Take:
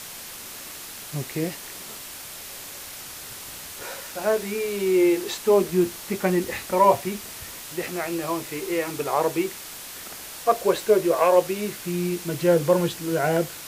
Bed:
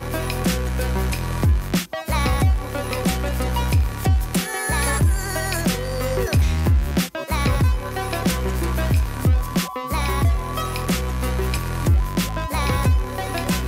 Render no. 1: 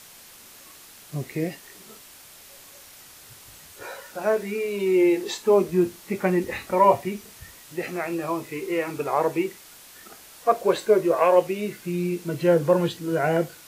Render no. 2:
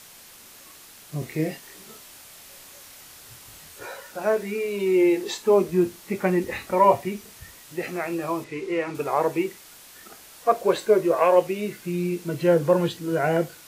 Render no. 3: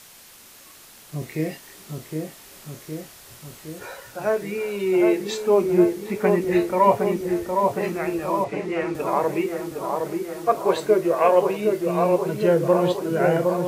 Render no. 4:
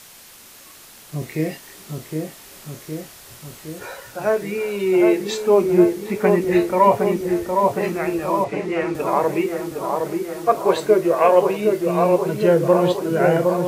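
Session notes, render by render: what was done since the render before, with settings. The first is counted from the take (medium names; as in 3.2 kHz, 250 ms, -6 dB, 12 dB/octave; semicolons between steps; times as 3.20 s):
noise print and reduce 9 dB
1.19–3.85 s: doubling 26 ms -5 dB; 8.44–8.95 s: distance through air 66 m
feedback echo behind a low-pass 763 ms, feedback 64%, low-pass 1.4 kHz, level -3.5 dB
trim +3 dB; peak limiter -3 dBFS, peak gain reduction 2 dB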